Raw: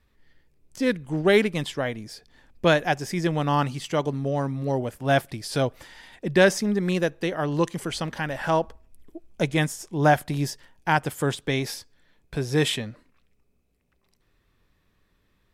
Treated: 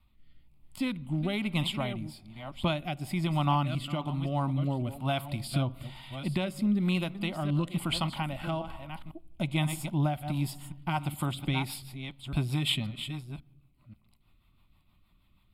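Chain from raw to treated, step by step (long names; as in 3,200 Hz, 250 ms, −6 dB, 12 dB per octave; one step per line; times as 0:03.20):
delay that plays each chunk backwards 536 ms, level −13 dB
on a send at −23 dB: convolution reverb RT60 1.1 s, pre-delay 3 ms
on the sum: downward compressor 6 to 1, threshold −23 dBFS, peak gain reduction 11.5 dB
phaser with its sweep stopped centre 1,700 Hz, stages 6
rotating-speaker cabinet horn 1.1 Hz, later 6.3 Hz, at 0:10.52
level +4 dB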